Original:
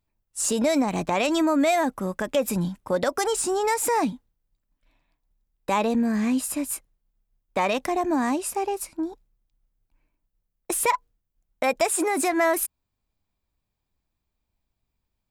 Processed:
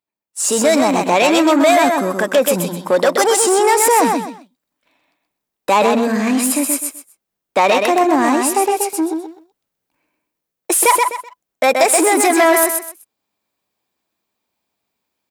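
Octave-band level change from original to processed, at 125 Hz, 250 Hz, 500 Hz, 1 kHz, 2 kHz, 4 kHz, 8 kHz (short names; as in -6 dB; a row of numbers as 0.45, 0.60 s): +4.0, +7.5, +11.0, +11.5, +11.0, +11.5, +11.5 dB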